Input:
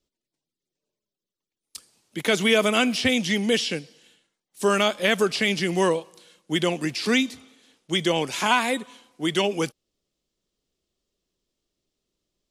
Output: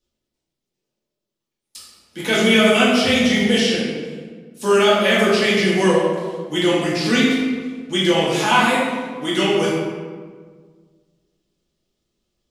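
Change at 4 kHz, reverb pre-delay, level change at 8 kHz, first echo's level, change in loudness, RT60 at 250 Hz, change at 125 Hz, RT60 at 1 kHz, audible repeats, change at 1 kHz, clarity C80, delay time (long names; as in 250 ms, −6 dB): +5.5 dB, 3 ms, +3.5 dB, no echo audible, +6.0 dB, 2.0 s, +6.5 dB, 1.5 s, no echo audible, +6.0 dB, 2.0 dB, no echo audible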